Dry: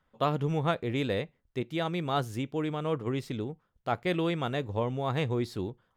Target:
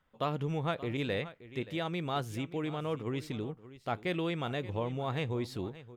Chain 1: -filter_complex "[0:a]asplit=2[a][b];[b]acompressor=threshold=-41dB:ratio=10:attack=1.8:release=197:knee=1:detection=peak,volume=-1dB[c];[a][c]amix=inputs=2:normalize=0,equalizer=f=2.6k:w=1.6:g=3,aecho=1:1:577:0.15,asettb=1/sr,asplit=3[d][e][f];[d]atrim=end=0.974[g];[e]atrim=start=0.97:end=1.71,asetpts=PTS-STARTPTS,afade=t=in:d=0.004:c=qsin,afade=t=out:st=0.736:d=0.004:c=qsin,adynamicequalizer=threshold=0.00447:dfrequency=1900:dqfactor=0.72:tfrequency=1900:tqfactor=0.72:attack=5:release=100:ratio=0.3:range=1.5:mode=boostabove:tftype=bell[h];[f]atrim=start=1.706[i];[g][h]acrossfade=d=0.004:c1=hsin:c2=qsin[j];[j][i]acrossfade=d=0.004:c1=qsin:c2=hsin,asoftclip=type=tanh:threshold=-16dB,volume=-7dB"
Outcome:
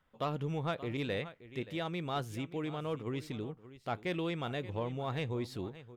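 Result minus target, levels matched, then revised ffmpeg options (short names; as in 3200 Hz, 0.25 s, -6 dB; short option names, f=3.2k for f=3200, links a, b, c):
soft clip: distortion +15 dB; compressor: peak gain reduction +9 dB
-filter_complex "[0:a]asplit=2[a][b];[b]acompressor=threshold=-31dB:ratio=10:attack=1.8:release=197:knee=1:detection=peak,volume=-1dB[c];[a][c]amix=inputs=2:normalize=0,equalizer=f=2.6k:w=1.6:g=3,aecho=1:1:577:0.15,asettb=1/sr,asplit=3[d][e][f];[d]atrim=end=0.974[g];[e]atrim=start=0.97:end=1.71,asetpts=PTS-STARTPTS,afade=t=in:d=0.004:c=qsin,afade=t=out:st=0.736:d=0.004:c=qsin,adynamicequalizer=threshold=0.00447:dfrequency=1900:dqfactor=0.72:tfrequency=1900:tqfactor=0.72:attack=5:release=100:ratio=0.3:range=1.5:mode=boostabove:tftype=bell[h];[f]atrim=start=1.706[i];[g][h]acrossfade=d=0.004:c1=hsin:c2=qsin[j];[j][i]acrossfade=d=0.004:c1=qsin:c2=hsin,asoftclip=type=tanh:threshold=-6.5dB,volume=-7dB"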